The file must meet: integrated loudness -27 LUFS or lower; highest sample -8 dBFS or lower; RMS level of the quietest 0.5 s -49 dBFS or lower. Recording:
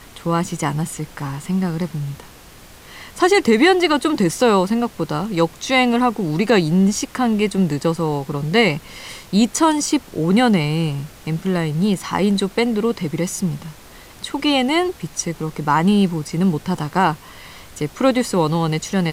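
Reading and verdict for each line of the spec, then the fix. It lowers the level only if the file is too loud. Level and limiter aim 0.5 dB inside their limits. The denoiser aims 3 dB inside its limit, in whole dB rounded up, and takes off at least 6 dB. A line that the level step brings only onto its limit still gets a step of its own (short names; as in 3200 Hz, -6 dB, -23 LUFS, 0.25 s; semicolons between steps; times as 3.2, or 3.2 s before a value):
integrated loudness -19.0 LUFS: fail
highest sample -4.0 dBFS: fail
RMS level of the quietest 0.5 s -43 dBFS: fail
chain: gain -8.5 dB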